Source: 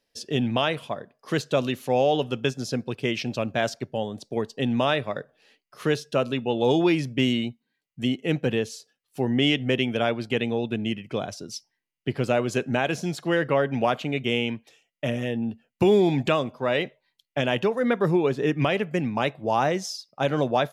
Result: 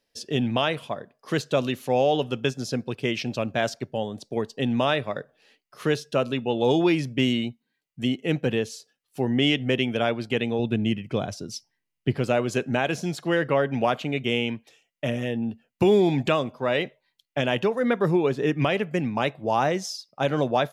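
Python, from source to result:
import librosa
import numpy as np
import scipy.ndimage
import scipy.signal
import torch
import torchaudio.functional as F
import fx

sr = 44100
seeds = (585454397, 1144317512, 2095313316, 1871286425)

y = fx.low_shelf(x, sr, hz=200.0, db=8.0, at=(10.59, 12.19))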